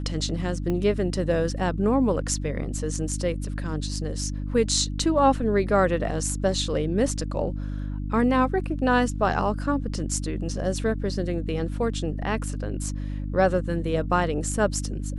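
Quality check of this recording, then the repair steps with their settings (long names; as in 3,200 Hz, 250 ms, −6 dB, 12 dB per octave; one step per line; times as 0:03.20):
mains hum 50 Hz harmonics 6 −30 dBFS
0:00.70: click −17 dBFS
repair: click removal
hum removal 50 Hz, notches 6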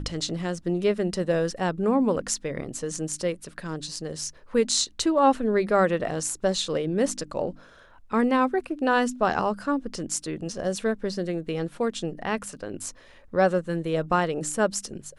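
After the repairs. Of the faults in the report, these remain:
0:00.70: click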